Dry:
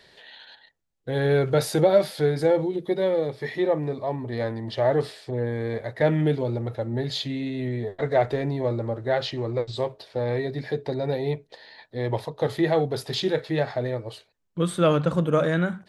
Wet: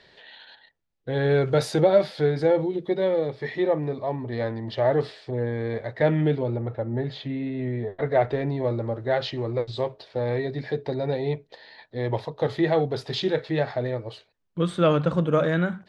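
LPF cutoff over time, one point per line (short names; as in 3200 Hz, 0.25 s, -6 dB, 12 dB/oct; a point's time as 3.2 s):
1.19 s 4700 Hz
1.65 s 8000 Hz
1.81 s 4700 Hz
6.2 s 4700 Hz
6.68 s 2100 Hz
7.54 s 2100 Hz
8.83 s 5200 Hz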